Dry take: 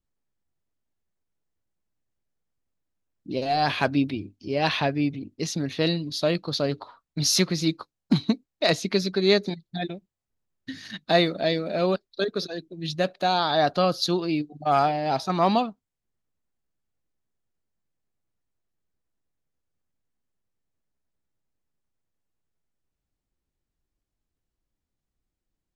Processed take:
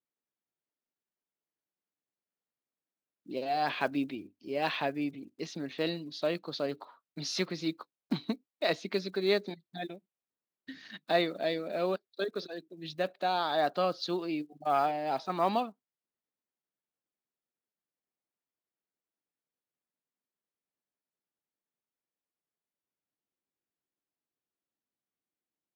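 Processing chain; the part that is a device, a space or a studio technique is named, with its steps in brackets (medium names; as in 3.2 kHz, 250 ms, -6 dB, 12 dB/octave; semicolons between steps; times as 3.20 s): early digital voice recorder (band-pass 250–3700 Hz; block-companded coder 7-bit); trim -6.5 dB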